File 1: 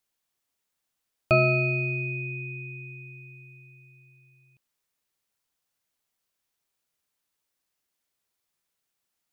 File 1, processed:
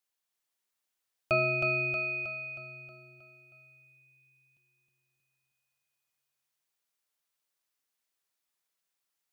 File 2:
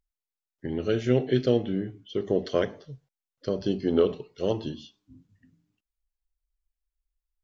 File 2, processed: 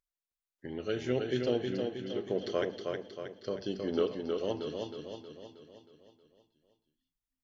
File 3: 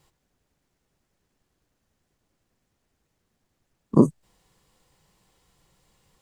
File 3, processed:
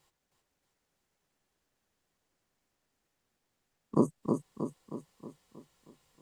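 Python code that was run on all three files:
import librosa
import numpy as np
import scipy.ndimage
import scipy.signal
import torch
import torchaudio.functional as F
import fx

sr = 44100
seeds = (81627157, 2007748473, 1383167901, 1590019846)

p1 = fx.low_shelf(x, sr, hz=320.0, db=-9.0)
p2 = p1 + fx.echo_feedback(p1, sr, ms=316, feedback_pct=52, wet_db=-4.5, dry=0)
y = F.gain(torch.from_numpy(p2), -4.5).numpy()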